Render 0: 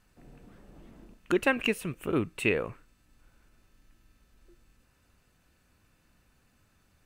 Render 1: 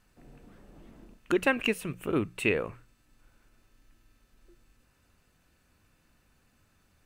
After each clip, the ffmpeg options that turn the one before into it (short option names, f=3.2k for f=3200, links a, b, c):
-af "bandreject=f=60:t=h:w=6,bandreject=f=120:t=h:w=6,bandreject=f=180:t=h:w=6"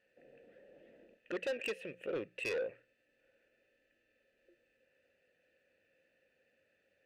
-filter_complex "[0:a]alimiter=limit=-16.5dB:level=0:latency=1:release=217,asplit=3[a][b][c];[a]bandpass=f=530:t=q:w=8,volume=0dB[d];[b]bandpass=f=1.84k:t=q:w=8,volume=-6dB[e];[c]bandpass=f=2.48k:t=q:w=8,volume=-9dB[f];[d][e][f]amix=inputs=3:normalize=0,asoftclip=type=tanh:threshold=-39.5dB,volume=7.5dB"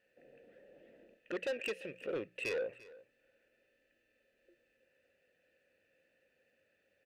-af "aecho=1:1:345:0.1"